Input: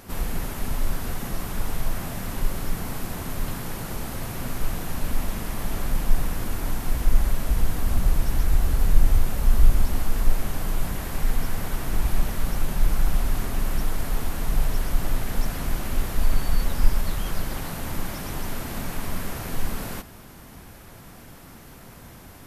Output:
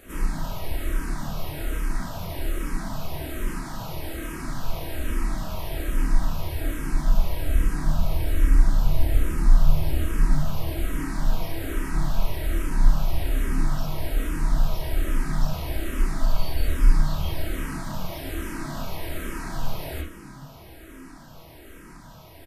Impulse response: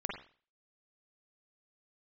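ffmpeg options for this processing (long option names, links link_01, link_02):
-filter_complex "[0:a]asplit=7[link_01][link_02][link_03][link_04][link_05][link_06][link_07];[link_02]adelay=339,afreqshift=63,volume=-17dB[link_08];[link_03]adelay=678,afreqshift=126,volume=-21.4dB[link_09];[link_04]adelay=1017,afreqshift=189,volume=-25.9dB[link_10];[link_05]adelay=1356,afreqshift=252,volume=-30.3dB[link_11];[link_06]adelay=1695,afreqshift=315,volume=-34.7dB[link_12];[link_07]adelay=2034,afreqshift=378,volume=-39.2dB[link_13];[link_01][link_08][link_09][link_10][link_11][link_12][link_13]amix=inputs=7:normalize=0[link_14];[1:a]atrim=start_sample=2205,asetrate=70560,aresample=44100[link_15];[link_14][link_15]afir=irnorm=-1:irlink=0,asplit=2[link_16][link_17];[link_17]afreqshift=-1.2[link_18];[link_16][link_18]amix=inputs=2:normalize=1,volume=4dB"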